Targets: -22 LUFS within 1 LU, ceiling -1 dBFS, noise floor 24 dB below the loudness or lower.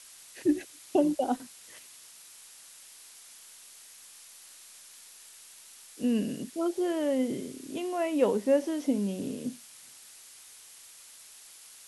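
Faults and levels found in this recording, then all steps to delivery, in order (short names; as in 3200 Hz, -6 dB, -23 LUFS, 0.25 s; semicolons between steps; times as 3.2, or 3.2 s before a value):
noise floor -52 dBFS; noise floor target -54 dBFS; loudness -30.0 LUFS; peak -12.5 dBFS; loudness target -22.0 LUFS
-> noise print and reduce 6 dB; gain +8 dB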